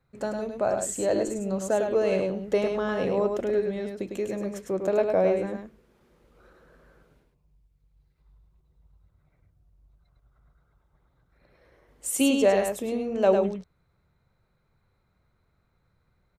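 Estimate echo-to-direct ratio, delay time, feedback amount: -5.0 dB, 0.103 s, no steady repeat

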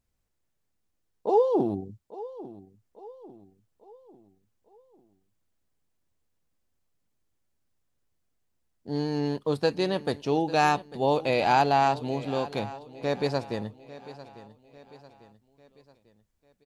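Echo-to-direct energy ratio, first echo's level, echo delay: -16.0 dB, -17.0 dB, 0.847 s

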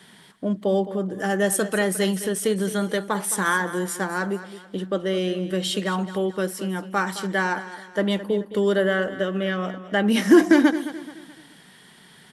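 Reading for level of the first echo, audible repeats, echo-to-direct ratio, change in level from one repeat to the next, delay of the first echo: -14.0 dB, 3, -13.0 dB, -8.0 dB, 0.215 s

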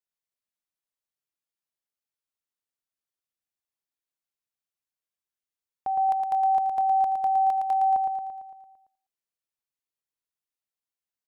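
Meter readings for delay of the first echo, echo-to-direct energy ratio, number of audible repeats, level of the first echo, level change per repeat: 0.113 s, -3.0 dB, 7, -5.0 dB, -4.5 dB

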